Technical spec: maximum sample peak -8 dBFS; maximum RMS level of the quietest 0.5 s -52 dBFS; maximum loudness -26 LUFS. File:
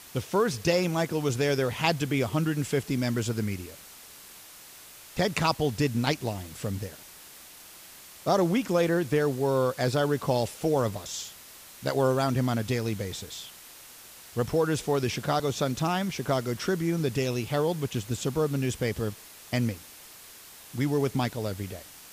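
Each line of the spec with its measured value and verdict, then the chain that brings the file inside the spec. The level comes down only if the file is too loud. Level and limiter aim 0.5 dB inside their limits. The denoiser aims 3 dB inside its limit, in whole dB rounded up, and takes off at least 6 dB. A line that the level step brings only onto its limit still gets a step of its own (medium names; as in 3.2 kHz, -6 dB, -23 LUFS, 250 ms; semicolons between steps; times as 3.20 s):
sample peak -10.0 dBFS: pass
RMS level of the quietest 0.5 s -49 dBFS: fail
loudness -28.0 LUFS: pass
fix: noise reduction 6 dB, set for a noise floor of -49 dBFS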